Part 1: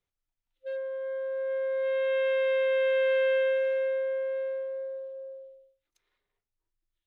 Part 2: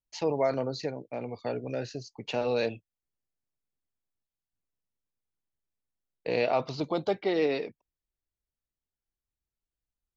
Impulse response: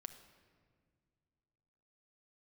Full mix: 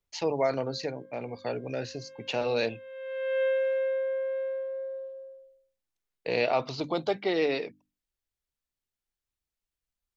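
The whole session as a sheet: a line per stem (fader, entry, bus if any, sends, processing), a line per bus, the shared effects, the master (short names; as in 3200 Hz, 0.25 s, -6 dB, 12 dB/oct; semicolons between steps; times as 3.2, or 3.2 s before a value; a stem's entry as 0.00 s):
0.0 dB, 0.00 s, no send, tone controls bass +4 dB, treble +4 dB; auto duck -23 dB, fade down 1.20 s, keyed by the second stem
-0.5 dB, 0.00 s, no send, high shelf 2100 Hz +10.5 dB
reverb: off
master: high shelf 4000 Hz -9 dB; notches 50/100/150/200/250/300 Hz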